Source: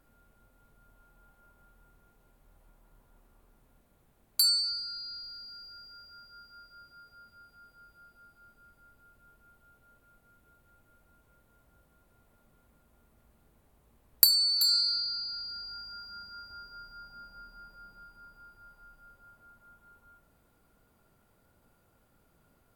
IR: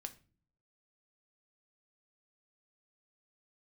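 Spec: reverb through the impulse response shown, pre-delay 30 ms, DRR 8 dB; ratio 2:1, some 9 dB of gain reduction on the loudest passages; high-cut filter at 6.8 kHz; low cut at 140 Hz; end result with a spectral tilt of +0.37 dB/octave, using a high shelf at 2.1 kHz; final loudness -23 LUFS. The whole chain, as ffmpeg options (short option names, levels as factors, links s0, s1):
-filter_complex "[0:a]highpass=140,lowpass=6800,highshelf=f=2100:g=4.5,acompressor=threshold=0.02:ratio=2,asplit=2[s0][s1];[1:a]atrim=start_sample=2205,adelay=30[s2];[s1][s2]afir=irnorm=-1:irlink=0,volume=0.631[s3];[s0][s3]amix=inputs=2:normalize=0,volume=2.99"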